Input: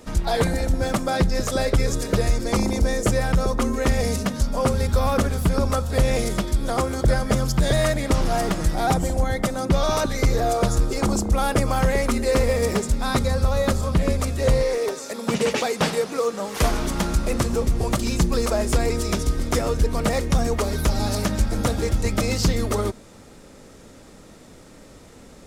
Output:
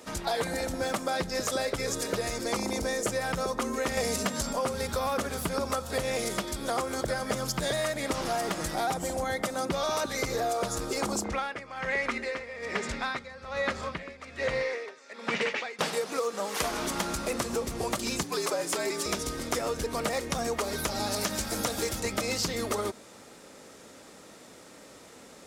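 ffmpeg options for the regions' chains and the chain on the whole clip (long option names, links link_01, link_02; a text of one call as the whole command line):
ffmpeg -i in.wav -filter_complex "[0:a]asettb=1/sr,asplit=3[link_01][link_02][link_03];[link_01]atrim=end=3.974[link_04];[link_02]atrim=start=3.97:end=4.53,asetpts=PTS-STARTPTS,afade=type=in:duration=0.004:curve=qsin,afade=type=out:start_time=0.556:duration=0.004:curve=qsin,acontrast=86,aeval=exprs='val(0)+0.0141*sin(2*PI*7500*n/s)':channel_layout=same[link_05];[link_03]atrim=start=4.526[link_06];[link_04][link_05]acrossfade=duration=0.004:curve1=hsin:curve2=qsin[link_07];[link_07][link_06]acrossfade=duration=0.004:curve1=qsin:curve2=hsin,asettb=1/sr,asplit=3[link_08][link_09][link_10];[link_08]atrim=end=11.244[link_11];[link_09]atrim=start=11.24:end=15.79,asetpts=PTS-STARTPTS,afade=type=in:duration=0.004:curve=qsin,afade=type=out:start_time=4.546:duration=0.004:curve=qsin,lowpass=5000,equalizer=frequency=2000:width_type=o:width=1.1:gain=10.5,aeval=exprs='val(0)*pow(10,-19*(0.5-0.5*cos(2*PI*1.2*n/s))/20)':channel_layout=same[link_12];[link_10]atrim=start=15.786[link_13];[link_11][link_12]acrossfade=duration=0.004:curve1=hsin:curve2=qsin[link_14];[link_14][link_13]acrossfade=duration=0.004:curve1=qsin:curve2=hsin,asettb=1/sr,asplit=3[link_15][link_16][link_17];[link_15]atrim=end=18.234[link_18];[link_16]atrim=start=18.23:end=19.06,asetpts=PTS-STARTPTS,afade=type=in:duration=0.004:curve=qsin,afade=type=out:start_time=0.826:duration=0.004:curve=qsin,highpass=320,afreqshift=-65[link_19];[link_17]atrim=start=19.056[link_20];[link_18][link_19]acrossfade=duration=0.004:curve1=hsin:curve2=qsin[link_21];[link_21][link_20]acrossfade=duration=0.004:curve1=qsin:curve2=hsin,asettb=1/sr,asplit=3[link_22][link_23][link_24];[link_22]atrim=end=21.214[link_25];[link_23]atrim=start=21.21:end=22,asetpts=PTS-STARTPTS,afade=type=in:duration=0.004:curve=qsin,afade=type=out:start_time=0.786:duration=0.004:curve=qsin,acrossover=split=7000[link_26][link_27];[link_27]acompressor=threshold=-44dB:ratio=4:attack=1:release=60[link_28];[link_26][link_28]amix=inputs=2:normalize=0,aemphasis=mode=production:type=50kf[link_29];[link_24]atrim=start=21.996[link_30];[link_25][link_29]acrossfade=duration=0.004:curve1=hsin:curve2=qsin[link_31];[link_31][link_30]acrossfade=duration=0.004:curve1=qsin:curve2=hsin,highpass=frequency=470:poles=1,acompressor=threshold=-26dB:ratio=6" out.wav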